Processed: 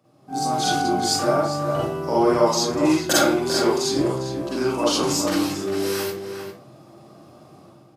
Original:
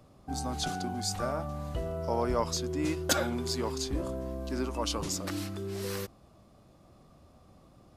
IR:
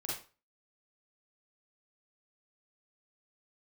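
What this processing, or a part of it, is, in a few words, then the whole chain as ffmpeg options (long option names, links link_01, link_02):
far laptop microphone: -filter_complex "[1:a]atrim=start_sample=2205[link_01];[0:a][link_01]afir=irnorm=-1:irlink=0,highpass=frequency=130:width=0.5412,highpass=frequency=130:width=1.3066,dynaudnorm=framelen=140:gausssize=5:maxgain=11dB,asettb=1/sr,asplit=3[link_02][link_03][link_04];[link_02]atrim=end=3.914[link_05];[link_03]atrim=start=3.91:end=4.56,asetpts=PTS-STARTPTS,afade=type=in:duration=0.004:curve=qsin,afade=type=out:start_time=0.646:duration=0.004:curve=qsin,lowpass=12000[link_06];[link_04]atrim=start=4.556[link_07];[link_05][link_06]acrossfade=duration=0.004:curve1=hsin:curve2=qsin[link_08];[link_08][link_07]acrossfade=duration=0.004:curve1=qsin:curve2=hsin,asplit=2[link_09][link_10];[link_10]adelay=402.3,volume=-7dB,highshelf=frequency=4000:gain=-9.05[link_11];[link_09][link_11]amix=inputs=2:normalize=0,volume=-1dB"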